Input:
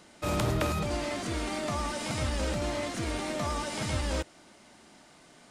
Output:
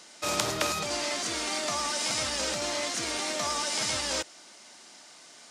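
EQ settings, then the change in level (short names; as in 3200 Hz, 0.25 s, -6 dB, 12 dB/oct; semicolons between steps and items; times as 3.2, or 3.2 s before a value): HPF 650 Hz 6 dB/oct; bell 5800 Hz +9 dB 1.3 oct; +3.0 dB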